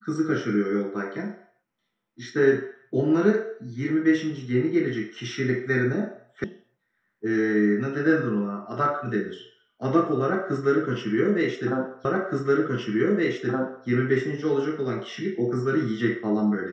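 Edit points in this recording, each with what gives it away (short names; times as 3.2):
6.44 sound cut off
12.05 repeat of the last 1.82 s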